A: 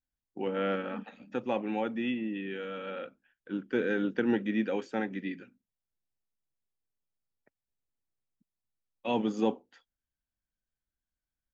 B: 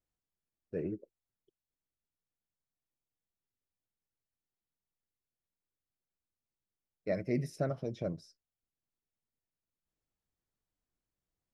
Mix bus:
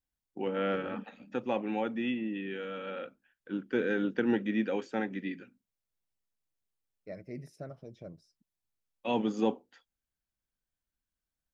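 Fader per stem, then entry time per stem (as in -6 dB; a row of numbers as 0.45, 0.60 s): -0.5, -10.0 dB; 0.00, 0.00 s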